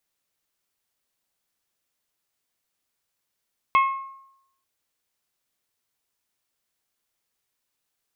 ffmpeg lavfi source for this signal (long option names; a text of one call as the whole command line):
ffmpeg -f lavfi -i "aevalsrc='0.224*pow(10,-3*t/0.79)*sin(2*PI*1080*t)+0.0944*pow(10,-3*t/0.486)*sin(2*PI*2160*t)+0.0398*pow(10,-3*t/0.428)*sin(2*PI*2592*t)+0.0168*pow(10,-3*t/0.366)*sin(2*PI*3240*t)':duration=0.89:sample_rate=44100" out.wav